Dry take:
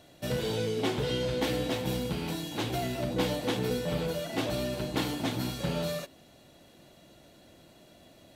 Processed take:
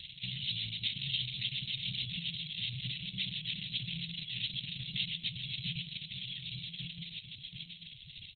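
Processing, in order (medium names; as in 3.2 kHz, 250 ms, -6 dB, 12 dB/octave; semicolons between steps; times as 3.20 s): self-modulated delay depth 0.17 ms; high-pass 230 Hz 12 dB/octave; in parallel at +1.5 dB: compression 8:1, threshold -43 dBFS, peak gain reduction 17 dB; on the sum: word length cut 8-bit, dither none; peaking EQ 1.3 kHz -10 dB 0.77 oct; delay 1148 ms -6 dB; dynamic bell 9.8 kHz, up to +3 dB, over -53 dBFS, Q 1.9; inverse Chebyshev band-stop 300–1300 Hz, stop band 50 dB; on a send: delay 729 ms -7.5 dB; on the sum: harmonic tremolo 7.3 Hz, depth 50%, crossover 410 Hz; upward compressor, threshold -37 dBFS; trim +5 dB; Opus 6 kbps 48 kHz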